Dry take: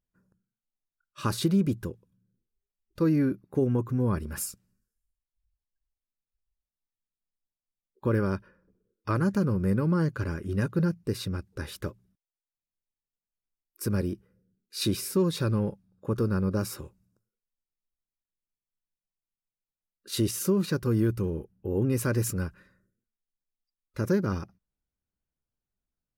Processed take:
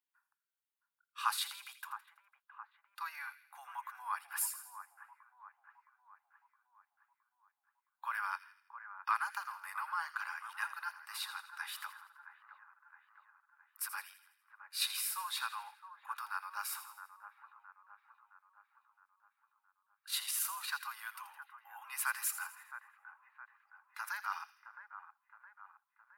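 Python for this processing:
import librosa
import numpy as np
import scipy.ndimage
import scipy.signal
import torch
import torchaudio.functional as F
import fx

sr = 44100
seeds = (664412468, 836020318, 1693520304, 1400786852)

y = scipy.signal.sosfilt(scipy.signal.butter(12, 820.0, 'highpass', fs=sr, output='sos'), x)
y = fx.peak_eq(y, sr, hz=6100.0, db=-9.0, octaves=0.82)
y = fx.echo_split(y, sr, split_hz=1900.0, low_ms=666, high_ms=82, feedback_pct=52, wet_db=-11.5)
y = y * librosa.db_to_amplitude(1.0)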